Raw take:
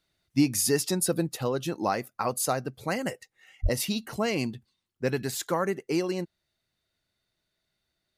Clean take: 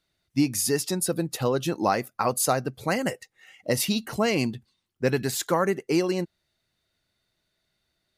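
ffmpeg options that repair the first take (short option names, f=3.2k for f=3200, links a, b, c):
-filter_complex "[0:a]asplit=3[a][b][c];[a]afade=t=out:st=3.62:d=0.02[d];[b]highpass=f=140:w=0.5412,highpass=f=140:w=1.3066,afade=t=in:st=3.62:d=0.02,afade=t=out:st=3.74:d=0.02[e];[c]afade=t=in:st=3.74:d=0.02[f];[d][e][f]amix=inputs=3:normalize=0,asetnsamples=n=441:p=0,asendcmd='1.29 volume volume 4dB',volume=0dB"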